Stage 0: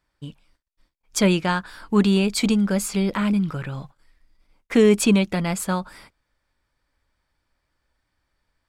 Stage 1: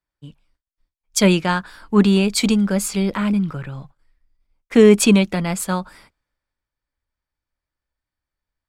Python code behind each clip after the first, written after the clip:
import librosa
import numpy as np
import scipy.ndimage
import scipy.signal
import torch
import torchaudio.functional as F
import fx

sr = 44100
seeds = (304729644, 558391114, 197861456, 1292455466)

y = fx.band_widen(x, sr, depth_pct=40)
y = F.gain(torch.from_numpy(y), 2.5).numpy()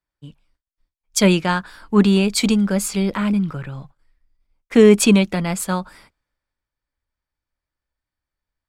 y = x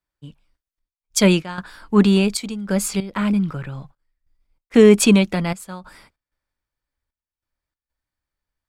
y = fx.step_gate(x, sr, bpm=95, pattern='xxxxx..xx.', floor_db=-12.0, edge_ms=4.5)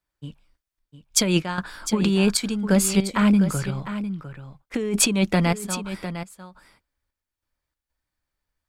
y = fx.over_compress(x, sr, threshold_db=-18.0, ratio=-1.0)
y = y + 10.0 ** (-11.0 / 20.0) * np.pad(y, (int(704 * sr / 1000.0), 0))[:len(y)]
y = F.gain(torch.from_numpy(y), -1.0).numpy()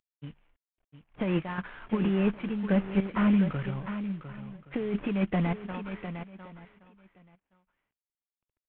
y = fx.cvsd(x, sr, bps=16000)
y = y + 10.0 ** (-21.0 / 20.0) * np.pad(y, (int(1121 * sr / 1000.0), 0))[:len(y)]
y = F.gain(torch.from_numpy(y), -5.0).numpy()